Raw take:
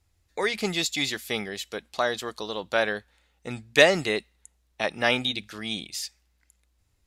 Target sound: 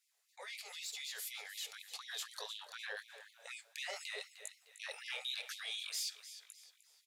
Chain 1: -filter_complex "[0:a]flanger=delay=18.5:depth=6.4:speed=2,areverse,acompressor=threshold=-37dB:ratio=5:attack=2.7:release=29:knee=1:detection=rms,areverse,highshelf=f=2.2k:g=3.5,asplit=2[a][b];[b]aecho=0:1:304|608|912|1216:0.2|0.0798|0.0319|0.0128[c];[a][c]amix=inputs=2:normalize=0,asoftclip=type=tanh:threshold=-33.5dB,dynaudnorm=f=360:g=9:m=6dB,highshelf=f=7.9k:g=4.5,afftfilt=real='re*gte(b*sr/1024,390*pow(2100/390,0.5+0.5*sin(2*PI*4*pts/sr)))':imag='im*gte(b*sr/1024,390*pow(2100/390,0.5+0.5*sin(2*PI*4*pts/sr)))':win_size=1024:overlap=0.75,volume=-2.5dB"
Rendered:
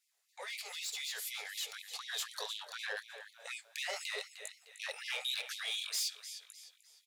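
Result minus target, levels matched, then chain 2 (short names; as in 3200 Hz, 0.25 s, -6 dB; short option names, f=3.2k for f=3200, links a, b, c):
compressor: peak gain reduction -6 dB
-filter_complex "[0:a]flanger=delay=18.5:depth=6.4:speed=2,areverse,acompressor=threshold=-44.5dB:ratio=5:attack=2.7:release=29:knee=1:detection=rms,areverse,highshelf=f=2.2k:g=3.5,asplit=2[a][b];[b]aecho=0:1:304|608|912|1216:0.2|0.0798|0.0319|0.0128[c];[a][c]amix=inputs=2:normalize=0,asoftclip=type=tanh:threshold=-33.5dB,dynaudnorm=f=360:g=9:m=6dB,highshelf=f=7.9k:g=4.5,afftfilt=real='re*gte(b*sr/1024,390*pow(2100/390,0.5+0.5*sin(2*PI*4*pts/sr)))':imag='im*gte(b*sr/1024,390*pow(2100/390,0.5+0.5*sin(2*PI*4*pts/sr)))':win_size=1024:overlap=0.75,volume=-2.5dB"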